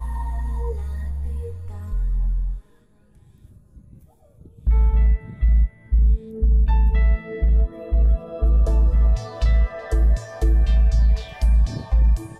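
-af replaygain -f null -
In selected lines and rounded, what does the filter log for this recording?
track_gain = +14.6 dB
track_peak = 0.239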